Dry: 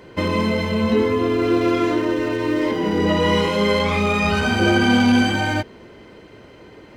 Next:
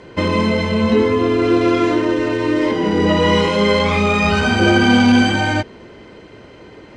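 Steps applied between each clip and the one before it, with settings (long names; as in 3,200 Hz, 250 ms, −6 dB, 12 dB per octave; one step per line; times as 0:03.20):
low-pass filter 8,900 Hz 24 dB per octave
level +3.5 dB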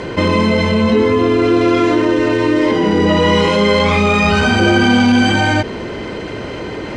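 envelope flattener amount 50%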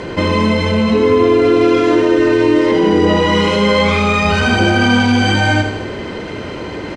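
repeating echo 79 ms, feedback 55%, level −7.5 dB
level −1 dB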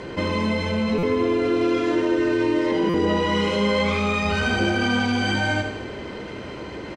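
double-tracking delay 15 ms −11.5 dB
on a send at −18 dB: convolution reverb RT60 1.6 s, pre-delay 31 ms
on the sum: buffer that repeats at 0:00.98/0:02.89, samples 256, times 8
level −9 dB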